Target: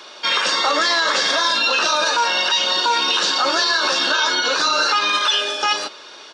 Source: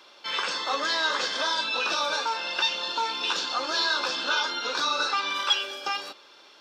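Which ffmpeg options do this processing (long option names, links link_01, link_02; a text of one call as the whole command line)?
ffmpeg -i in.wav -af "asetrate=45938,aresample=44100,aresample=22050,aresample=44100,alimiter=level_in=21dB:limit=-1dB:release=50:level=0:latency=1,volume=-8dB" out.wav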